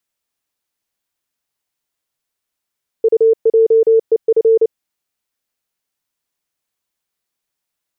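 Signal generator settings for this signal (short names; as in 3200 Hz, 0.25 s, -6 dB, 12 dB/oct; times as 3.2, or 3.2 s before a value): Morse "UJEF" 29 wpm 449 Hz -7 dBFS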